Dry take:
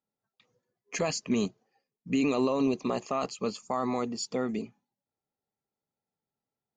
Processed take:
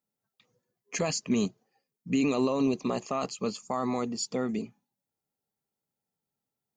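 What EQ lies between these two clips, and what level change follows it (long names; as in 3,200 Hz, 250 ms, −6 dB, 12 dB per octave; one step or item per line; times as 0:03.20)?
parametric band 160 Hz +3.5 dB 1.4 octaves
high-shelf EQ 7,300 Hz +8 dB
−1.0 dB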